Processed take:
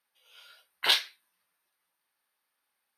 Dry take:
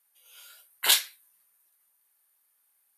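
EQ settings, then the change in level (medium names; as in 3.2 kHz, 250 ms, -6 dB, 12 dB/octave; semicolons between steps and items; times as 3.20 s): Savitzky-Golay filter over 15 samples; bass shelf 440 Hz +3.5 dB; 0.0 dB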